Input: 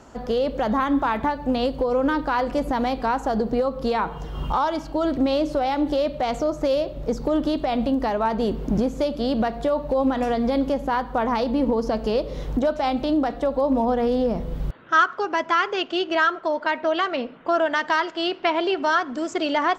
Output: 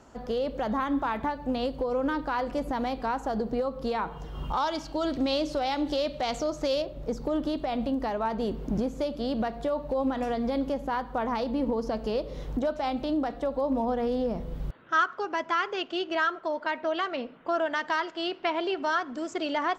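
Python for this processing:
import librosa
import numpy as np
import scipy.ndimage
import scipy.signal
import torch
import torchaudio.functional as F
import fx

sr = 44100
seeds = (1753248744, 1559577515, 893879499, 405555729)

y = fx.peak_eq(x, sr, hz=4900.0, db=9.0, octaves=2.1, at=(4.57, 6.82))
y = y * librosa.db_to_amplitude(-6.5)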